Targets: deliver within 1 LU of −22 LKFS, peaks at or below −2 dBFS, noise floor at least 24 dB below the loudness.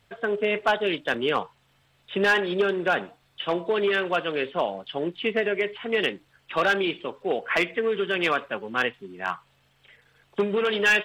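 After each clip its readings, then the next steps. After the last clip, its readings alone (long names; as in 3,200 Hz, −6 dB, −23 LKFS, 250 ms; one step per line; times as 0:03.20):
share of clipped samples 0.3%; peaks flattened at −14.0 dBFS; number of dropouts 1; longest dropout 1.9 ms; integrated loudness −25.5 LKFS; sample peak −14.0 dBFS; target loudness −22.0 LKFS
→ clipped peaks rebuilt −14 dBFS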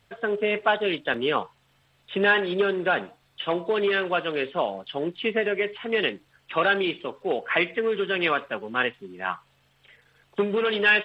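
share of clipped samples 0.0%; number of dropouts 1; longest dropout 1.9 ms
→ repair the gap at 0:01.14, 1.9 ms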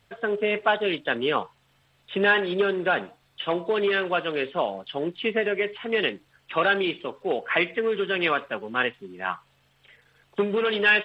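number of dropouts 0; integrated loudness −25.5 LKFS; sample peak −6.5 dBFS; target loudness −22.0 LKFS
→ level +3.5 dB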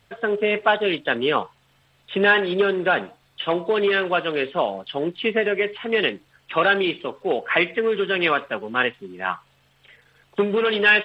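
integrated loudness −22.0 LKFS; sample peak −3.0 dBFS; background noise floor −61 dBFS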